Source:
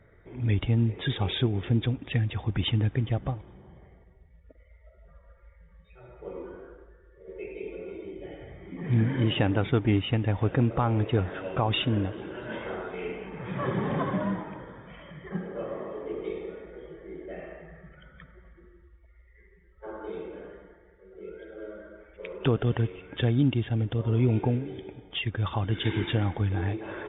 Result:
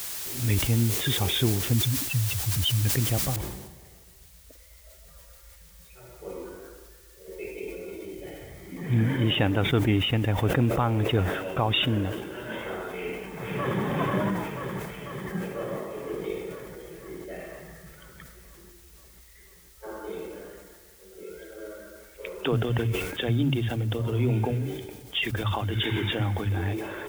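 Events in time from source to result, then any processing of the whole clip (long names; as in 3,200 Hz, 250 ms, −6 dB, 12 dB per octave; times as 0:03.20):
0:01.73–0:02.85: expanding power law on the bin magnitudes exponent 2.3
0:03.36: noise floor change −41 dB −62 dB
0:12.88–0:13.81: delay throw 490 ms, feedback 70%, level −3 dB
0:21.23–0:26.57: multiband delay without the direct sound highs, lows 60 ms, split 210 Hz
whole clip: high-shelf EQ 2,600 Hz +7 dB; level that may fall only so fast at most 50 dB per second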